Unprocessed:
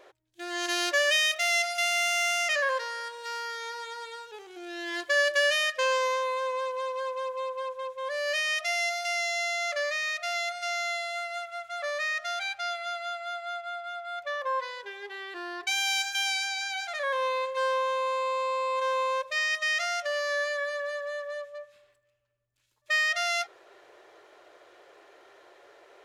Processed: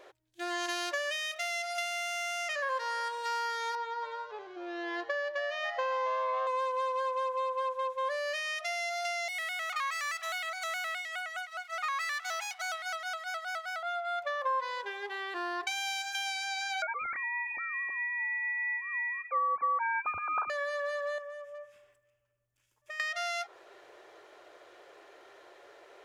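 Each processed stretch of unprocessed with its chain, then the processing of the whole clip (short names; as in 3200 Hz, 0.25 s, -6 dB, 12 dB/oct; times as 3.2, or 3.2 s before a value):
3.75–6.47 LPF 6100 Hz 24 dB/oct + high shelf 2400 Hz -12 dB + frequency-shifting echo 0.274 s, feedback 53%, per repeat +120 Hz, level -14 dB
9.28–13.83 minimum comb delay 0.96 ms + HPF 860 Hz 24 dB/oct + shaped vibrato square 4.8 Hz, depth 100 cents
16.82–20.5 sine-wave speech + HPF 660 Hz + inverted band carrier 3000 Hz
21.18–23 bell 4100 Hz -14.5 dB 0.28 oct + compressor 4:1, threshold -43 dBFS
whole clip: compressor, threshold -33 dBFS; dynamic EQ 940 Hz, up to +7 dB, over -52 dBFS, Q 1.4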